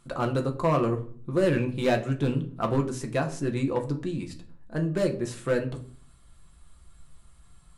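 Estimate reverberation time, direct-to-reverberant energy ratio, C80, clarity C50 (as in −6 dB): 0.50 s, 3.0 dB, 17.5 dB, 13.5 dB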